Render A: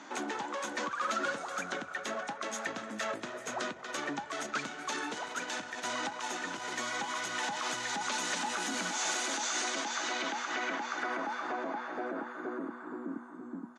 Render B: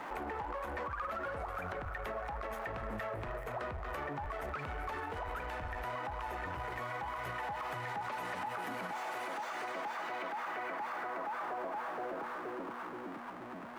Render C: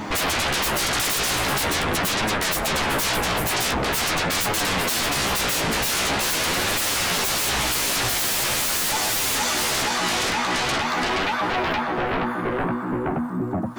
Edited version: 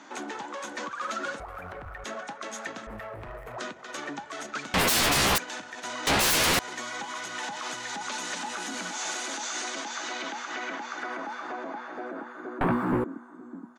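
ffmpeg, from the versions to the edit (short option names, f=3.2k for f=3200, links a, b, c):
-filter_complex "[1:a]asplit=2[a][b];[2:a]asplit=3[c][d][e];[0:a]asplit=6[f][g][h][i][j][k];[f]atrim=end=1.402[l];[a]atrim=start=1.398:end=2.042[m];[g]atrim=start=2.038:end=2.872[n];[b]atrim=start=2.868:end=3.582[o];[h]atrim=start=3.578:end=4.742[p];[c]atrim=start=4.738:end=5.382[q];[i]atrim=start=5.378:end=6.072[r];[d]atrim=start=6.068:end=6.592[s];[j]atrim=start=6.588:end=12.612[t];[e]atrim=start=12.608:end=13.042[u];[k]atrim=start=13.038[v];[l][m]acrossfade=d=0.004:c1=hsin:c2=hsin[w];[w][n]acrossfade=d=0.004:c1=hsin:c2=hsin[x];[x][o]acrossfade=d=0.004:c1=hsin:c2=hsin[y];[y][p]acrossfade=d=0.004:c1=hsin:c2=hsin[z];[z][q]acrossfade=d=0.004:c1=hsin:c2=hsin[aa];[aa][r]acrossfade=d=0.004:c1=hsin:c2=hsin[ab];[ab][s]acrossfade=d=0.004:c1=hsin:c2=hsin[ac];[ac][t]acrossfade=d=0.004:c1=hsin:c2=hsin[ad];[ad][u]acrossfade=d=0.004:c1=hsin:c2=hsin[ae];[ae][v]acrossfade=d=0.004:c1=hsin:c2=hsin"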